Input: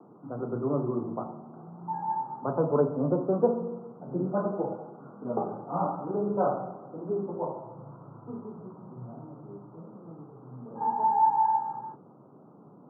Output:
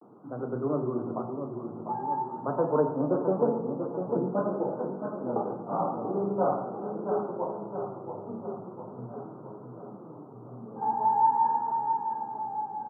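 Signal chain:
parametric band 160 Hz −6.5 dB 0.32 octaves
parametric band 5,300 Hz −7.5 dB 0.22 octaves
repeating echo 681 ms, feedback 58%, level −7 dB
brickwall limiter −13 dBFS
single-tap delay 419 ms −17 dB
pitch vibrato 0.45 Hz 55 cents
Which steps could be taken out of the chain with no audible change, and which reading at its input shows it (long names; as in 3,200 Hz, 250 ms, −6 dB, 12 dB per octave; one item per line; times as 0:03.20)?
parametric band 5,300 Hz: nothing at its input above 1,500 Hz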